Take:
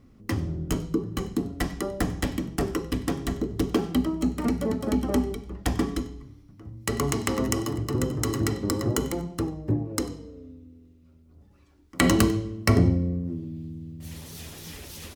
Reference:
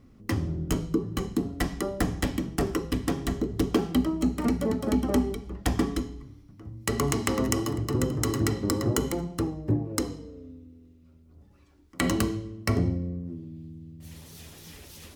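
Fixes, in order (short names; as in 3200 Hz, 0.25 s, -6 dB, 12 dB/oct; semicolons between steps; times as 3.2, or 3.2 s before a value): inverse comb 95 ms -22.5 dB; gain correction -5.5 dB, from 11.93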